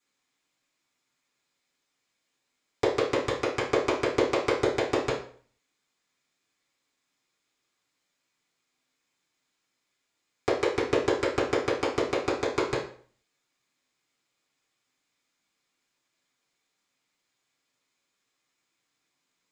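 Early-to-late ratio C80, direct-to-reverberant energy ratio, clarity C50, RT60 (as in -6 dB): 11.0 dB, -9.0 dB, 6.5 dB, 0.50 s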